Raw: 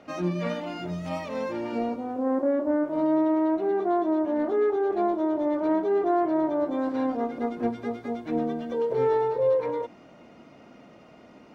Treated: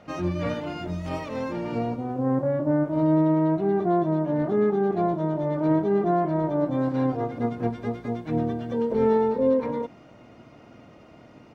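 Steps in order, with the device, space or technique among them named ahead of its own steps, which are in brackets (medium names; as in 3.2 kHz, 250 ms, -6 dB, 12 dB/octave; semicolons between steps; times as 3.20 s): octave pedal (harmony voices -12 st -4 dB)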